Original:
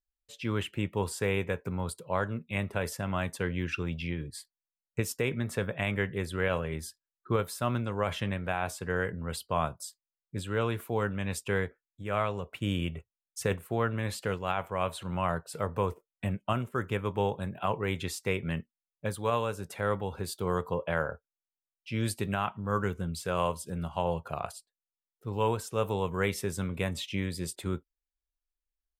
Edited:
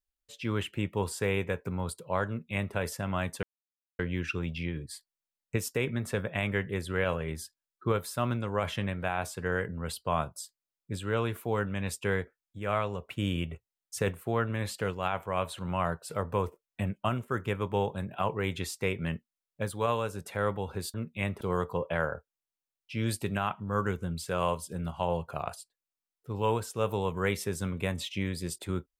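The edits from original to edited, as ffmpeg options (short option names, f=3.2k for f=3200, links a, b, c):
-filter_complex "[0:a]asplit=4[a][b][c][d];[a]atrim=end=3.43,asetpts=PTS-STARTPTS,afade=t=out:st=3.426:d=0.004:c=hsin,apad=pad_dur=0.56[e];[b]atrim=start=3.43:end=20.382,asetpts=PTS-STARTPTS,afade=t=in:d=0.004:c=hsin[f];[c]atrim=start=2.278:end=2.752[g];[d]atrim=start=20.378[h];[e][f]concat=n=2:v=0:a=1[i];[i][g]acrossfade=d=0.004:c1=hsin:c2=hsin[j];[j][h]acrossfade=d=0.004:c1=hsin:c2=hsin"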